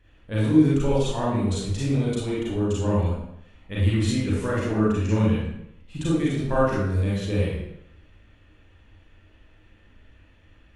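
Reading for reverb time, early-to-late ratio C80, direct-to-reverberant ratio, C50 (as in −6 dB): 0.80 s, 3.0 dB, −7.5 dB, −1.5 dB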